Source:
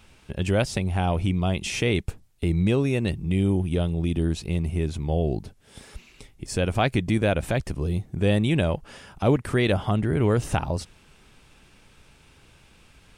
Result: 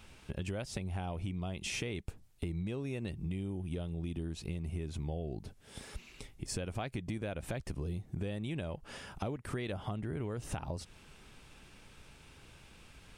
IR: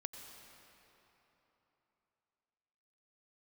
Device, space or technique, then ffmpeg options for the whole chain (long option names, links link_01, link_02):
serial compression, peaks first: -af "acompressor=threshold=-28dB:ratio=6,acompressor=threshold=-39dB:ratio=1.5,volume=-2dB"